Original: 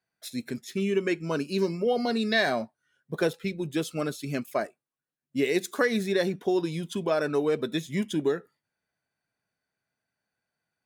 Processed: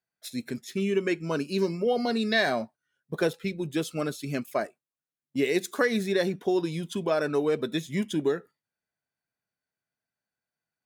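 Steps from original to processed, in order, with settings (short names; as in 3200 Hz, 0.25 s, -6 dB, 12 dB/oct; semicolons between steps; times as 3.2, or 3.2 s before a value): gate -46 dBFS, range -7 dB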